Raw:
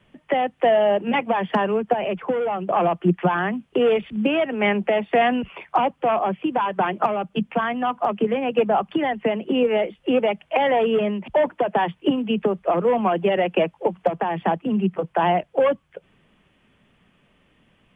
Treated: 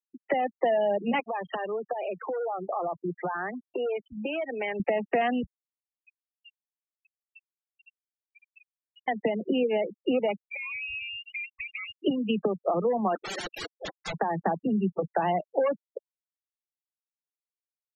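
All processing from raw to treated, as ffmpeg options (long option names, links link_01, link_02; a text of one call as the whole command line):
ffmpeg -i in.wav -filter_complex "[0:a]asettb=1/sr,asplit=3[link_01][link_02][link_03];[link_01]atrim=end=1.204[link_04];[link_02]atrim=start=1.2:end=4.8,asetpts=PTS-STARTPTS,afade=type=in:duration=0.004:curve=qsin,afade=type=out:start_time=3.596:duration=0.004:curve=qsin,equalizer=frequency=210:width=1.7:gain=-12.5,acompressor=threshold=-30dB:ratio=2.5:attack=3.2:release=140:knee=1:detection=peak,acrusher=bits=7:mix=0:aa=0.5[link_05];[link_03]atrim=start=4.796[link_06];[link_04][link_05]acrossfade=duration=0.004:curve1=hsin:curve2=qsin[link_07];[link_07][link_06]acrossfade=duration=0.004:curve1=qsin:curve2=hsin,asettb=1/sr,asplit=3[link_08][link_09][link_10];[link_08]atrim=end=5.474[link_11];[link_09]atrim=start=5.47:end=9.08,asetpts=PTS-STARTPTS,afade=type=in:duration=0.004:curve=qsin,afade=type=out:start_time=3.606:duration=0.004:curve=qsin,asuperpass=centerf=2500:order=12:qfactor=3.6,acompressor=threshold=-47dB:ratio=6:attack=3.2:release=140:knee=1:detection=peak[link_12];[link_10]atrim=start=9.076[link_13];[link_11][link_12]acrossfade=duration=0.004:curve1=hsin:curve2=qsin[link_14];[link_14][link_13]acrossfade=duration=0.004:curve1=qsin:curve2=hsin,asettb=1/sr,asplit=3[link_15][link_16][link_17];[link_15]atrim=end=10.394[link_18];[link_16]atrim=start=10.39:end=11.94,asetpts=PTS-STARTPTS,afade=type=in:duration=0.004:curve=qsin,afade=type=out:start_time=1.546:duration=0.004:curve=qsin,acompressor=threshold=-39dB:ratio=3:attack=3.2:release=140:knee=1:detection=peak,lowpass=frequency=2600:width_type=q:width=0.5098,lowpass=frequency=2600:width_type=q:width=0.6013,lowpass=frequency=2600:width_type=q:width=0.9,lowpass=frequency=2600:width_type=q:width=2.563,afreqshift=-3000,aeval=exprs='val(0)+0.00398*(sin(2*PI*60*n/s)+sin(2*PI*2*60*n/s)/2+sin(2*PI*3*60*n/s)/3+sin(2*PI*4*60*n/s)/4+sin(2*PI*5*60*n/s)/5)':channel_layout=same[link_19];[link_17]atrim=start=11.936[link_20];[link_18][link_19]acrossfade=duration=0.004:curve1=hsin:curve2=qsin[link_21];[link_21][link_20]acrossfade=duration=0.004:curve1=qsin:curve2=hsin,asettb=1/sr,asplit=3[link_22][link_23][link_24];[link_22]atrim=end=13.154[link_25];[link_23]atrim=start=13.15:end=14.14,asetpts=PTS-STARTPTS,afade=type=in:duration=0.004:curve=qsin,afade=type=out:start_time=0.986:duration=0.004:curve=qsin,highpass=680,aeval=exprs='(mod(18.8*val(0)+1,2)-1)/18.8':channel_layout=same[link_26];[link_24]atrim=start=14.136[link_27];[link_25][link_26]acrossfade=duration=0.004:curve1=hsin:curve2=qsin[link_28];[link_28][link_27]acrossfade=duration=0.004:curve1=qsin:curve2=hsin,acompressor=threshold=-25dB:ratio=2.5,afftfilt=real='re*gte(hypot(re,im),0.0398)':imag='im*gte(hypot(re,im),0.0398)':win_size=1024:overlap=0.75,bandreject=frequency=1000:width=14" out.wav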